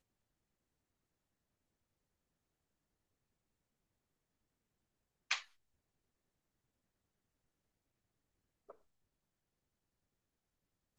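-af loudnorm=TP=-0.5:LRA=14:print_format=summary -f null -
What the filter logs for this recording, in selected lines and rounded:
Input Integrated:    -40.2 LUFS
Input True Peak:     -19.9 dBTP
Input LRA:             0.0 LU
Input Threshold:     -55.2 LUFS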